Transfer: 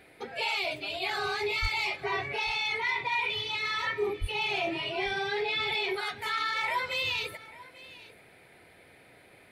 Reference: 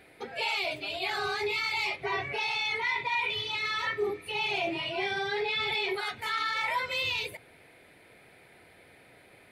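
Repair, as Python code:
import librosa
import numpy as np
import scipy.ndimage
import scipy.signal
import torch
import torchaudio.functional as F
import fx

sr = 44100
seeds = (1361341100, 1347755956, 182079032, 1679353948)

y = fx.fix_declip(x, sr, threshold_db=-20.5)
y = fx.highpass(y, sr, hz=140.0, slope=24, at=(1.61, 1.73), fade=0.02)
y = fx.highpass(y, sr, hz=140.0, slope=24, at=(4.2, 4.32), fade=0.02)
y = fx.fix_echo_inverse(y, sr, delay_ms=842, level_db=-19.0)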